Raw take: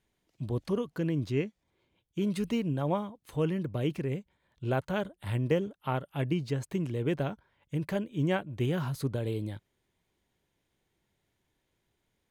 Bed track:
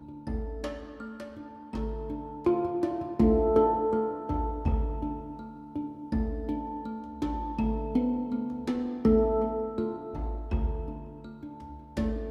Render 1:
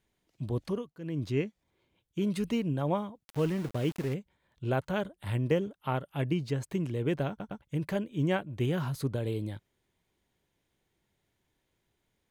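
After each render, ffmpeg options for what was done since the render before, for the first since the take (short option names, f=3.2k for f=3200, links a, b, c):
-filter_complex "[0:a]asplit=3[a][b][c];[a]afade=t=out:st=3.23:d=0.02[d];[b]aeval=exprs='val(0)*gte(abs(val(0)),0.0112)':c=same,afade=t=in:st=3.23:d=0.02,afade=t=out:st=4.13:d=0.02[e];[c]afade=t=in:st=4.13:d=0.02[f];[d][e][f]amix=inputs=3:normalize=0,asplit=6[g][h][i][j][k][l];[g]atrim=end=0.94,asetpts=PTS-STARTPTS,afade=t=out:st=0.65:d=0.29:silence=0.141254[m];[h]atrim=start=0.94:end=0.97,asetpts=PTS-STARTPTS,volume=-17dB[n];[i]atrim=start=0.97:end=7.402,asetpts=PTS-STARTPTS,afade=t=in:d=0.29:silence=0.141254[o];[j]atrim=start=7.288:end=7.402[p];[k]atrim=start=7.288:end=7.402[q];[l]atrim=start=7.618[r];[m][n][o]concat=n=3:v=0:a=1[s];[s][p]acrossfade=d=0.004:c1=hsin:c2=hsin[t];[t][q]acrossfade=d=0.004:c1=hsin:c2=hsin[u];[u][r]acrossfade=d=0.004:c1=hsin:c2=hsin"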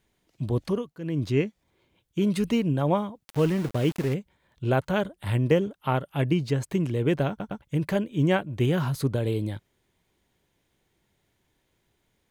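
-af "volume=6dB"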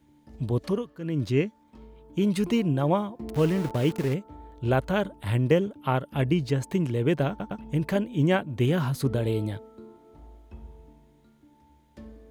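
-filter_complex "[1:a]volume=-15.5dB[a];[0:a][a]amix=inputs=2:normalize=0"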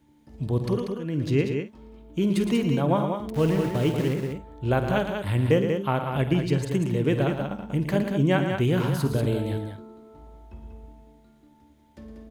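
-filter_complex "[0:a]asplit=2[a][b];[b]adelay=50,volume=-13dB[c];[a][c]amix=inputs=2:normalize=0,aecho=1:1:113.7|189.5:0.355|0.501"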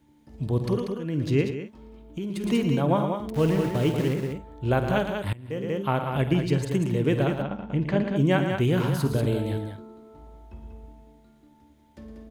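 -filter_complex "[0:a]asettb=1/sr,asplit=3[a][b][c];[a]atrim=end=1.504[d];[b]atrim=start=1.5:end=2.44,asetpts=PTS-STARTPTS,afade=t=in:d=0.004:c=qsin,afade=t=out:st=0.936:d=0.004:c=qsin,acompressor=threshold=-28dB:ratio=6:attack=3.2:release=140:knee=1:detection=peak[e];[c]atrim=start=2.436[f];[d][e]acrossfade=d=0.004:c1=hsin:c2=qsin[g];[g][f]acrossfade=d=0.004:c1=qsin:c2=hsin,asettb=1/sr,asplit=3[h][i][j];[h]atrim=end=7.424[k];[i]atrim=start=7.42:end=8.16,asetpts=PTS-STARTPTS,afade=t=in:d=0.004:c=qsin,afade=t=out:st=0.736:d=0.004:c=qsin,lowpass=3.8k[l];[j]atrim=start=8.156[m];[k][l]acrossfade=d=0.004:c1=hsin:c2=qsin[n];[n][m]acrossfade=d=0.004:c1=qsin:c2=hsin,asplit=2[o][p];[o]atrim=end=5.33,asetpts=PTS-STARTPTS,afade=t=out:st=5.326:d=0.004:c=hsin:silence=0.0794328[q];[p]atrim=start=5.33,asetpts=PTS-STARTPTS,afade=t=in:d=0.48:c=qua:silence=0.0794328[r];[q][r]concat=n=2:v=0:a=1"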